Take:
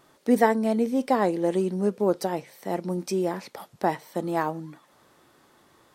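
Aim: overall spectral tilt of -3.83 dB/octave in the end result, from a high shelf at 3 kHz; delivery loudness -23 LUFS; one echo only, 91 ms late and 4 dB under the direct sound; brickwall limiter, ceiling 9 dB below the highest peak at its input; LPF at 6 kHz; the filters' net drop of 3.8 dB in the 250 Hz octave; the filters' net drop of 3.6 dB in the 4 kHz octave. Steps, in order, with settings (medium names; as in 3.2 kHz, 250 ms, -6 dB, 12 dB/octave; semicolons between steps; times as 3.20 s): low-pass 6 kHz; peaking EQ 250 Hz -5 dB; treble shelf 3 kHz +5 dB; peaking EQ 4 kHz -8 dB; peak limiter -16.5 dBFS; delay 91 ms -4 dB; trim +5 dB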